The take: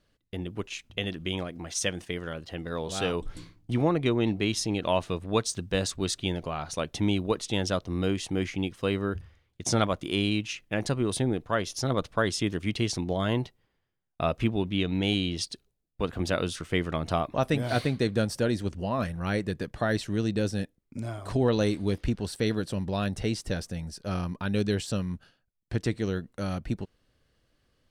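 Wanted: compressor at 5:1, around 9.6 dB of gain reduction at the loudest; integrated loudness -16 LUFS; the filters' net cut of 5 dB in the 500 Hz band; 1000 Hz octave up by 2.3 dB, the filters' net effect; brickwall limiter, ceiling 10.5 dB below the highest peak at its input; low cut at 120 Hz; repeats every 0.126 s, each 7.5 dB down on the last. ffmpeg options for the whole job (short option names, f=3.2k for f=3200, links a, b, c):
-af "highpass=120,equalizer=f=500:t=o:g=-8,equalizer=f=1k:t=o:g=5.5,acompressor=threshold=-32dB:ratio=5,alimiter=level_in=2dB:limit=-24dB:level=0:latency=1,volume=-2dB,aecho=1:1:126|252|378|504|630:0.422|0.177|0.0744|0.0312|0.0131,volume=22dB"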